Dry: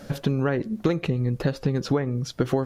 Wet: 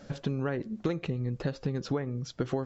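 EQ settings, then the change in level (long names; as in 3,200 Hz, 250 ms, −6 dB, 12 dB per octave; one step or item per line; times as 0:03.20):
linear-phase brick-wall low-pass 7,800 Hz
−7.5 dB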